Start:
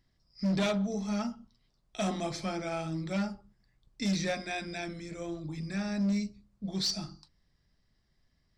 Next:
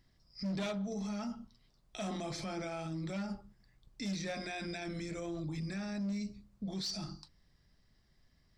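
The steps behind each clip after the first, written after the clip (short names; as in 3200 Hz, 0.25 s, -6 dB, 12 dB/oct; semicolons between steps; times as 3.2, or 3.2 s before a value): limiter -35.5 dBFS, peak gain reduction 11 dB; gain +3 dB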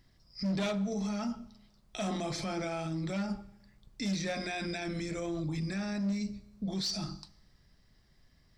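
Schroeder reverb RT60 1 s, combs from 30 ms, DRR 18.5 dB; gain +4.5 dB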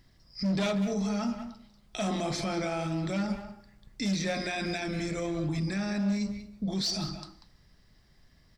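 speakerphone echo 0.19 s, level -7 dB; gain +3.5 dB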